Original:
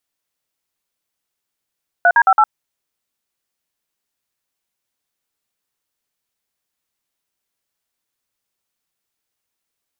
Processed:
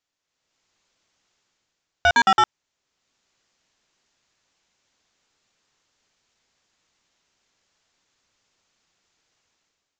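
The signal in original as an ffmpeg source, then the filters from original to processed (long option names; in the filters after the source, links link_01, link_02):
-f lavfi -i "aevalsrc='0.299*clip(min(mod(t,0.11),0.059-mod(t,0.11))/0.002,0,1)*(eq(floor(t/0.11),0)*(sin(2*PI*697*mod(t,0.11))+sin(2*PI*1477*mod(t,0.11)))+eq(floor(t/0.11),1)*(sin(2*PI*941*mod(t,0.11))+sin(2*PI*1633*mod(t,0.11)))+eq(floor(t/0.11),2)*(sin(2*PI*770*mod(t,0.11))+sin(2*PI*1336*mod(t,0.11)))+eq(floor(t/0.11),3)*(sin(2*PI*852*mod(t,0.11))+sin(2*PI*1336*mod(t,0.11))))':duration=0.44:sample_rate=44100"
-af "dynaudnorm=framelen=140:gausssize=7:maxgain=12dB,aresample=16000,asoftclip=type=tanh:threshold=-13dB,aresample=44100"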